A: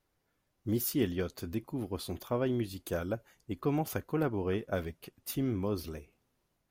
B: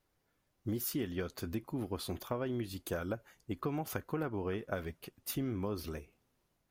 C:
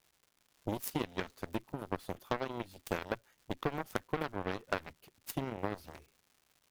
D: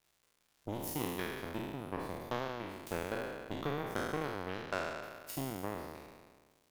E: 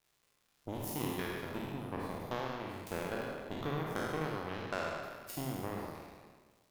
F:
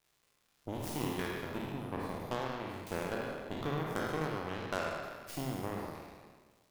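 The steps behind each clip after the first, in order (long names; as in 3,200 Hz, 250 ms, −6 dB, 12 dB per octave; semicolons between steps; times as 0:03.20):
dynamic equaliser 1,400 Hz, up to +4 dB, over −52 dBFS, Q 0.98; downward compressor 10 to 1, threshold −32 dBFS, peak gain reduction 9 dB
harmonic generator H 7 −15 dB, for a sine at −20 dBFS; surface crackle 280 per second −58 dBFS; level +4.5 dB
peak hold with a decay on every bin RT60 1.59 s; level −6 dB
convolution reverb RT60 0.70 s, pre-delay 47 ms, DRR 4 dB; level −1.5 dB
stylus tracing distortion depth 0.18 ms; level +1 dB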